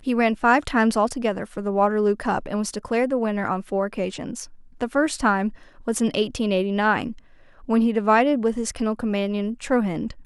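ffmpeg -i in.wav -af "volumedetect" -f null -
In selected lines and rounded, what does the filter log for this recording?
mean_volume: -22.7 dB
max_volume: -5.9 dB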